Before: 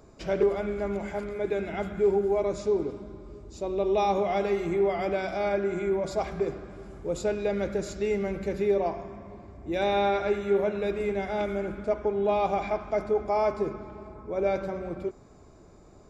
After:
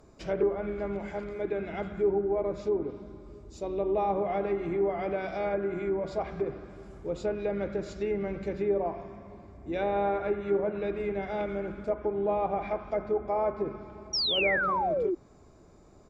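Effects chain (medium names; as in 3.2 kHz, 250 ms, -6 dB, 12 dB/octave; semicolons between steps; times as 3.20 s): low-pass that closes with the level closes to 1.6 kHz, closed at -22 dBFS; harmony voices -4 st -16 dB; painted sound fall, 14.13–15.15 s, 330–5800 Hz -25 dBFS; trim -3 dB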